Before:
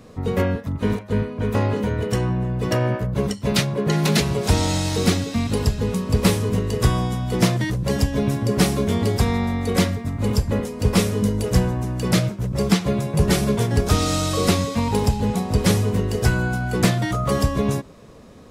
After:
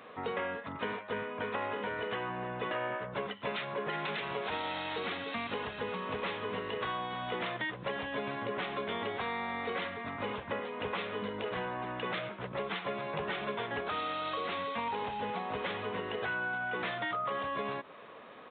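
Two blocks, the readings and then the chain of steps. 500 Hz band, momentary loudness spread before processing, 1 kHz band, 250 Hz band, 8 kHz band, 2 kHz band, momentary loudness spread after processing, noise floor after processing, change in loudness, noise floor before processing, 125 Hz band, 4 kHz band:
-12.5 dB, 4 LU, -6.0 dB, -21.5 dB, under -40 dB, -5.5 dB, 3 LU, -50 dBFS, -14.5 dB, -40 dBFS, -28.0 dB, -12.5 dB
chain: high-pass 1.2 kHz 12 dB/octave; tilt EQ -3.5 dB/octave; peak limiter -23.5 dBFS, peak gain reduction 9 dB; compression 4:1, threshold -41 dBFS, peak gain reduction 10 dB; resampled via 8 kHz; trim +7.5 dB

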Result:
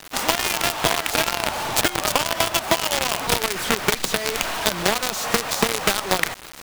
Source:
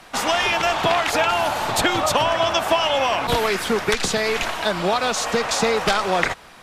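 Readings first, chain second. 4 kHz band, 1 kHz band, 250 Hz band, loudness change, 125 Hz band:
0.0 dB, -4.0 dB, -2.0 dB, -1.0 dB, -1.0 dB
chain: companded quantiser 2-bit; compression, threshold -13 dBFS, peak gain reduction 9.5 dB; trim -1 dB

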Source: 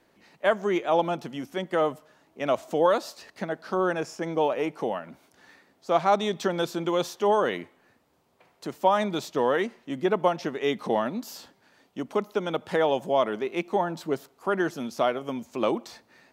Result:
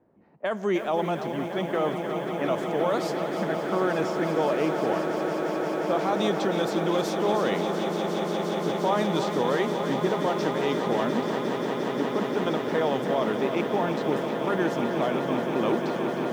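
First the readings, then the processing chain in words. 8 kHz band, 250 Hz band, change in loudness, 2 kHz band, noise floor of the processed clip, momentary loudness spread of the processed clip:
+1.0 dB, +4.5 dB, +0.5 dB, +1.0 dB, -32 dBFS, 4 LU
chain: level-controlled noise filter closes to 810 Hz, open at -22.5 dBFS; high-pass 85 Hz; bass shelf 150 Hz +8 dB; peak limiter -17 dBFS, peak gain reduction 9 dB; vibrato 3.9 Hz 6.6 cents; echo with a slow build-up 176 ms, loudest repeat 8, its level -11 dB; bit-crushed delay 311 ms, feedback 35%, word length 8-bit, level -9 dB

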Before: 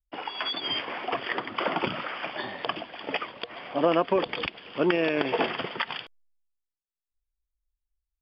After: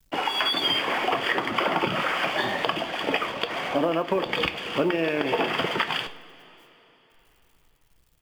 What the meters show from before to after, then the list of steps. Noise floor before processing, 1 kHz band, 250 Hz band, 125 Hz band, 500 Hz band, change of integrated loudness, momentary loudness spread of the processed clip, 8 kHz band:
under -85 dBFS, +4.5 dB, +2.0 dB, +3.5 dB, +1.5 dB, +4.0 dB, 4 LU, no reading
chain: companding laws mixed up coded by mu; compression 10:1, threshold -28 dBFS, peak gain reduction 11.5 dB; two-slope reverb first 0.38 s, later 3.8 s, from -19 dB, DRR 8.5 dB; trim +7.5 dB

